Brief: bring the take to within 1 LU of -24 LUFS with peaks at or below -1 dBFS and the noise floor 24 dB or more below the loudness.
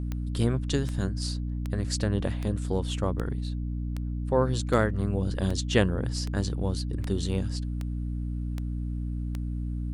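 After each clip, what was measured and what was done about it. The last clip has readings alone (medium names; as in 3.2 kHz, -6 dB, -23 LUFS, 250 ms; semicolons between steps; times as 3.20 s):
clicks found 13; hum 60 Hz; highest harmonic 300 Hz; hum level -29 dBFS; loudness -29.5 LUFS; peak level -7.0 dBFS; loudness target -24.0 LUFS
-> de-click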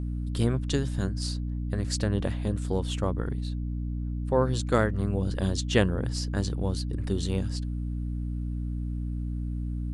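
clicks found 0; hum 60 Hz; highest harmonic 300 Hz; hum level -29 dBFS
-> hum notches 60/120/180/240/300 Hz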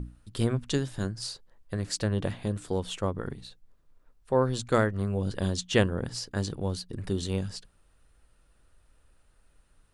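hum not found; loudness -30.5 LUFS; peak level -8.0 dBFS; loudness target -24.0 LUFS
-> trim +6.5 dB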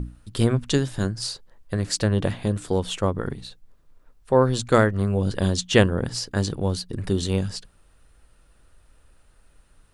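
loudness -24.0 LUFS; peak level -1.5 dBFS; noise floor -58 dBFS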